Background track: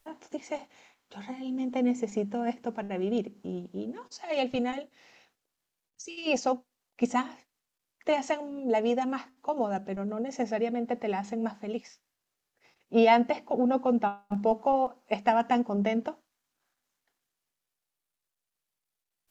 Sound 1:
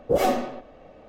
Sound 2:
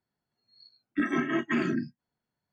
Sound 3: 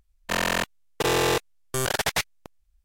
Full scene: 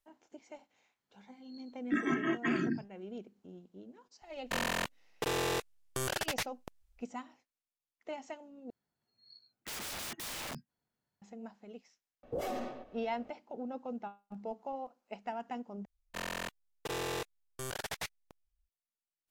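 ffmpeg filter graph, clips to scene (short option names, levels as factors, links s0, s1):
-filter_complex "[2:a]asplit=2[s0][s1];[3:a]asplit=2[s2][s3];[0:a]volume=0.168[s4];[s2]acompressor=threshold=0.0355:ratio=6:attack=3.2:release=140:knee=1:detection=peak[s5];[s1]aeval=exprs='(mod(50.1*val(0)+1,2)-1)/50.1':c=same[s6];[1:a]alimiter=limit=0.112:level=0:latency=1:release=46[s7];[s4]asplit=3[s8][s9][s10];[s8]atrim=end=8.704[s11];[s6]atrim=end=2.52,asetpts=PTS-STARTPTS,volume=0.75[s12];[s9]atrim=start=11.216:end=15.854[s13];[s3]atrim=end=2.84,asetpts=PTS-STARTPTS,volume=0.188[s14];[s10]atrim=start=18.686[s15];[s0]atrim=end=2.52,asetpts=PTS-STARTPTS,volume=0.631,afade=t=in:d=0.1,afade=t=out:st=2.42:d=0.1,adelay=940[s16];[s5]atrim=end=2.84,asetpts=PTS-STARTPTS,volume=0.75,afade=t=in:d=0.004:c=hsin,afade=t=out:st=2.836:d=0.004:c=hsin,adelay=4220[s17];[s7]atrim=end=1.08,asetpts=PTS-STARTPTS,volume=0.335,afade=t=in:d=0.004:c=hsin,afade=t=out:st=1.076:d=0.004:c=hsin,adelay=12230[s18];[s11][s12]acrossfade=d=0.004:c1=hsin:c2=hsin[s19];[s19][s13]acrossfade=d=0.004:c1=hsin:c2=hsin[s20];[s20][s14]acrossfade=d=0.004:c1=hsin:c2=hsin[s21];[s21][s15]acrossfade=d=0.004:c1=hsin:c2=hsin[s22];[s22][s16][s17][s18]amix=inputs=4:normalize=0"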